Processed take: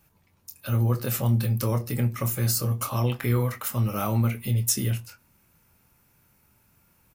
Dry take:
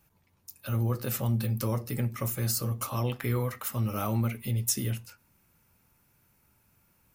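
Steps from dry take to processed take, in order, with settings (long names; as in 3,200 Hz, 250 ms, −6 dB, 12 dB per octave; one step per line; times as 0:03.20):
double-tracking delay 25 ms −10 dB
level +3.5 dB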